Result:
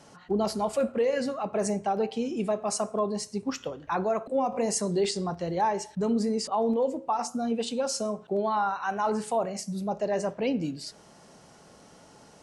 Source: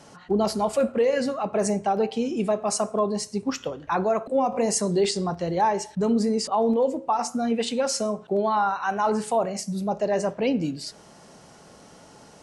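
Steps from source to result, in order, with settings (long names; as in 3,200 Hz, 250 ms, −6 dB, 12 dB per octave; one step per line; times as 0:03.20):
0:07.26–0:08.05: parametric band 2,000 Hz −10.5 dB 0.49 octaves
level −4 dB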